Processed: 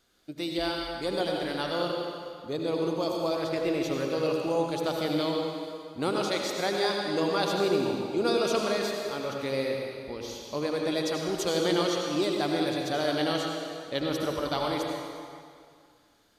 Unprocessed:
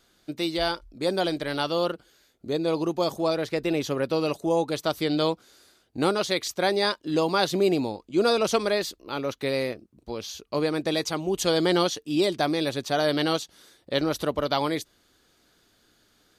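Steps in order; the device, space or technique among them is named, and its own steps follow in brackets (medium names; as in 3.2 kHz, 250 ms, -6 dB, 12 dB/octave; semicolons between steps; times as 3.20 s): stairwell (reverberation RT60 2.2 s, pre-delay 72 ms, DRR 0 dB); trim -6 dB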